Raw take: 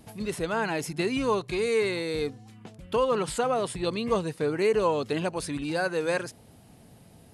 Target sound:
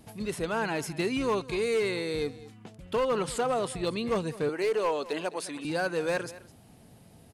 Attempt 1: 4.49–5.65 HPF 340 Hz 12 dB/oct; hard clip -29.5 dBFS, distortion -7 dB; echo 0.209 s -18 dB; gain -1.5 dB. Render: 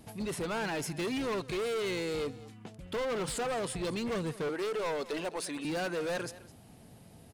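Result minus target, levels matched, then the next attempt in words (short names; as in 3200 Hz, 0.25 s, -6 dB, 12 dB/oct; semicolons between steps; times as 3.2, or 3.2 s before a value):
hard clip: distortion +12 dB
4.49–5.65 HPF 340 Hz 12 dB/oct; hard clip -20.5 dBFS, distortion -19 dB; echo 0.209 s -18 dB; gain -1.5 dB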